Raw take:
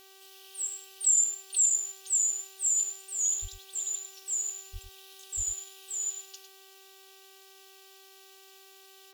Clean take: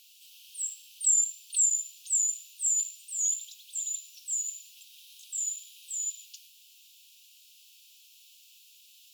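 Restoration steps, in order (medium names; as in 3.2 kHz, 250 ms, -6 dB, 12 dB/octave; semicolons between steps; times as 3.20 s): de-hum 386.6 Hz, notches 16; de-plosive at 3.41/4.72/5.36 s; inverse comb 103 ms -10 dB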